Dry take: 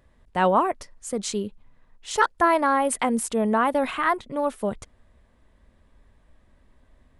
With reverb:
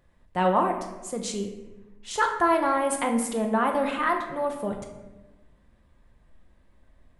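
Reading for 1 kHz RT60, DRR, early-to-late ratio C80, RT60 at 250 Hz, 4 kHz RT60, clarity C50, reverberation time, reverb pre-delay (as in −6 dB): 1.0 s, 2.5 dB, 9.0 dB, 1.6 s, 0.70 s, 6.5 dB, 1.1 s, 6 ms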